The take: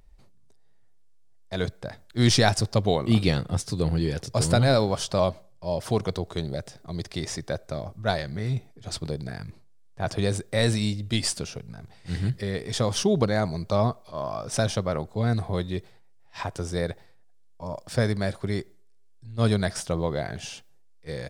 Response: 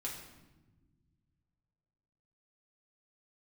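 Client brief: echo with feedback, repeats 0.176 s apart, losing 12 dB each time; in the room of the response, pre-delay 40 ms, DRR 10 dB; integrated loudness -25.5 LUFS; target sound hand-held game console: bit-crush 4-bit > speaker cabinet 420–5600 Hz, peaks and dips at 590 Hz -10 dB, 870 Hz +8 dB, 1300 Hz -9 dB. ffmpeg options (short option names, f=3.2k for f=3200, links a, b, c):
-filter_complex "[0:a]aecho=1:1:176|352|528:0.251|0.0628|0.0157,asplit=2[a][b];[1:a]atrim=start_sample=2205,adelay=40[c];[b][c]afir=irnorm=-1:irlink=0,volume=-10dB[d];[a][d]amix=inputs=2:normalize=0,acrusher=bits=3:mix=0:aa=0.000001,highpass=420,equalizer=f=590:t=q:w=4:g=-10,equalizer=f=870:t=q:w=4:g=8,equalizer=f=1.3k:t=q:w=4:g=-9,lowpass=f=5.6k:w=0.5412,lowpass=f=5.6k:w=1.3066,volume=4dB"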